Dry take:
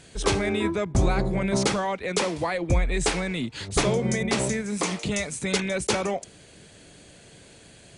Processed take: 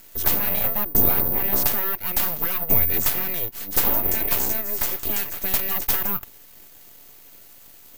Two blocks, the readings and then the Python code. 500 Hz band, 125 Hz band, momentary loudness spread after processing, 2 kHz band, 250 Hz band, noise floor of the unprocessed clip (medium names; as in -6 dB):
-7.5 dB, -7.0 dB, 6 LU, -3.0 dB, -7.5 dB, -51 dBFS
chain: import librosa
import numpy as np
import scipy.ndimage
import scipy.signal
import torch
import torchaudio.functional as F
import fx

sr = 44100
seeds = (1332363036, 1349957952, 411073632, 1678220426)

y = np.abs(x)
y = (np.kron(y[::3], np.eye(3)[0]) * 3)[:len(y)]
y = y * librosa.db_to_amplitude(-1.5)